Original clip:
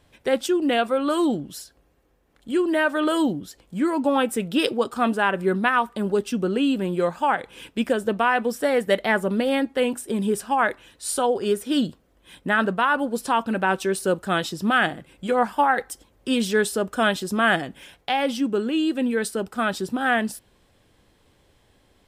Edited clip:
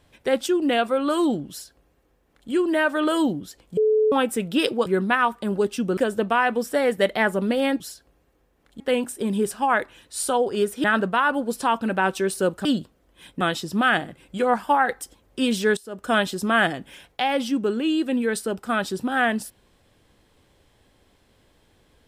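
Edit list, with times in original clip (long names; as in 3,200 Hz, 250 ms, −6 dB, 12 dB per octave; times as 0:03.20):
0:01.50–0:02.50: duplicate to 0:09.69
0:03.77–0:04.12: beep over 432 Hz −15.5 dBFS
0:04.86–0:05.40: remove
0:06.51–0:07.86: remove
0:11.73–0:12.49: move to 0:14.30
0:16.66–0:16.99: fade in quadratic, from −19 dB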